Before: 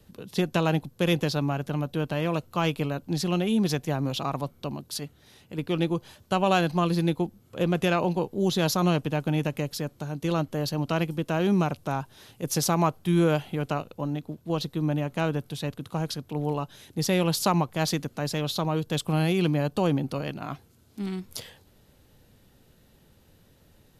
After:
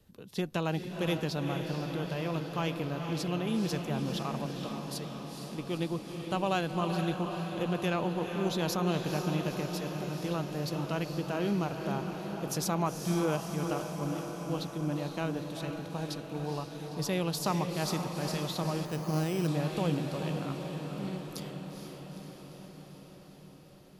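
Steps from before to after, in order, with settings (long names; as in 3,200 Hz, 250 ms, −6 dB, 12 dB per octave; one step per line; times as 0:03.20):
feedback delay with all-pass diffusion 465 ms, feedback 70%, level −6 dB
0:18.85–0:19.48: bad sample-rate conversion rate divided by 8×, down filtered, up hold
level −7.5 dB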